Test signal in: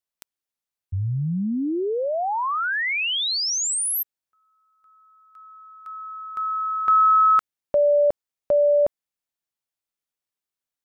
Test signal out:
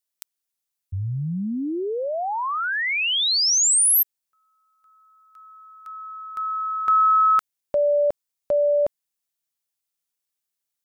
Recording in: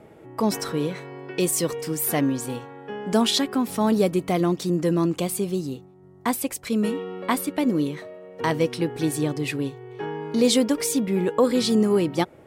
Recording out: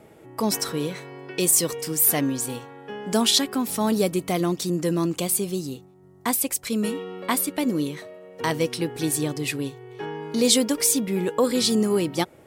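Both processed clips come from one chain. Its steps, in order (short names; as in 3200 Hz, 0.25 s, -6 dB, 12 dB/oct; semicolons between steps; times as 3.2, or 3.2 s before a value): high shelf 3700 Hz +10 dB; gain -2 dB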